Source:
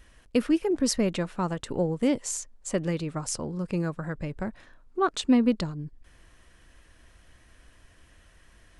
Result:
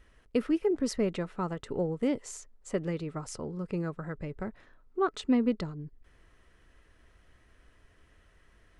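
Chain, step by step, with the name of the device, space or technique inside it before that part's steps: inside a helmet (high shelf 4400 Hz -8.5 dB; small resonant body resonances 420/1300/2000 Hz, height 7 dB); gain -5 dB

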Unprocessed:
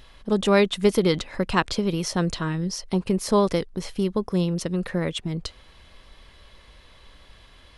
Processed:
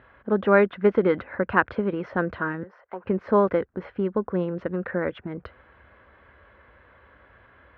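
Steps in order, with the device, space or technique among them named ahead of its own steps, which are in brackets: 2.63–3.04 three-band isolator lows -23 dB, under 520 Hz, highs -13 dB, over 2000 Hz; bass cabinet (speaker cabinet 66–2000 Hz, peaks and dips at 160 Hz -10 dB, 530 Hz +3 dB, 1500 Hz +9 dB)

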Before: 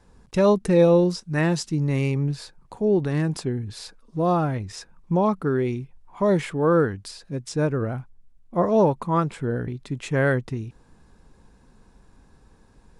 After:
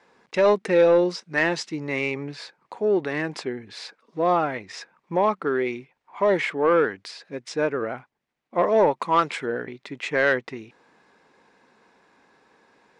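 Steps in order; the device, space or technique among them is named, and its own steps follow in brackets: intercom (BPF 400–4800 Hz; bell 2100 Hz +7 dB 0.54 oct; soft clip -13 dBFS, distortion -19 dB); 9–9.46 high shelf 2500 Hz +10.5 dB; gain +3.5 dB

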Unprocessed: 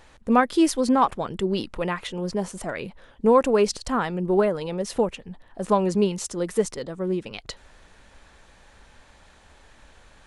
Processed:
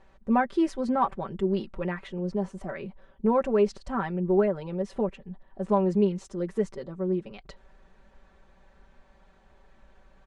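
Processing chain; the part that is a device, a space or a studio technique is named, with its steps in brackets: comb 5.2 ms, depth 73%; dynamic EQ 1800 Hz, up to +4 dB, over -37 dBFS, Q 1.2; through cloth (LPF 7800 Hz 12 dB/oct; high shelf 1900 Hz -14 dB); gain -5.5 dB

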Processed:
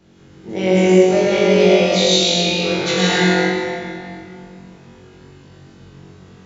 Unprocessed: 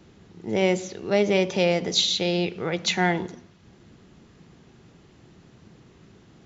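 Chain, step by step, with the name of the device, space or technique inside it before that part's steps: tunnel (flutter echo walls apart 3.7 m, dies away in 0.79 s; reverb RT60 2.6 s, pre-delay 95 ms, DRR -6.5 dB); gain -3 dB

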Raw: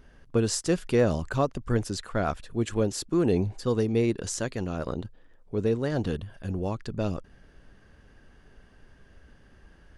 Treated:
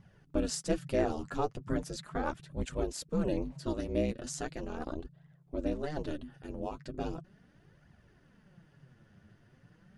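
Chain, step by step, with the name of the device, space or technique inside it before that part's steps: alien voice (ring modulator 150 Hz; flange 0.38 Hz, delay 0.9 ms, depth 9.4 ms, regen +22%); gain -1 dB

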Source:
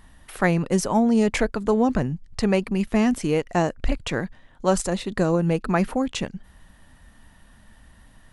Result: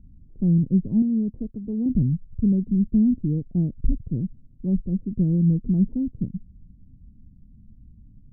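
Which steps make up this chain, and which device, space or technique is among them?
the neighbour's flat through the wall (LPF 260 Hz 24 dB/oct; bell 120 Hz +4.5 dB 1 oct); 1.02–1.86 low shelf 210 Hz -11.5 dB; gain +2.5 dB

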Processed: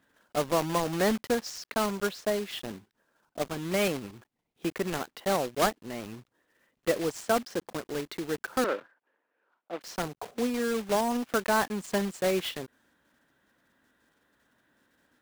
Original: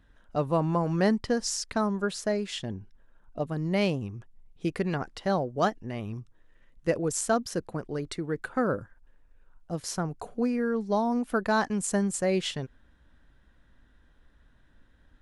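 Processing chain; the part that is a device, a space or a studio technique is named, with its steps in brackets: early digital voice recorder (BPF 240–3800 Hz; block floating point 3-bit); 8.64–9.81 three-band isolator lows -23 dB, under 270 Hz, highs -21 dB, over 3300 Hz

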